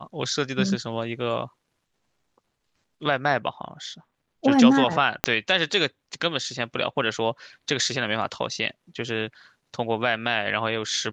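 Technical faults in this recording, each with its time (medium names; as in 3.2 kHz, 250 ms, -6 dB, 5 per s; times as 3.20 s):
5.24 s: pop -4 dBFS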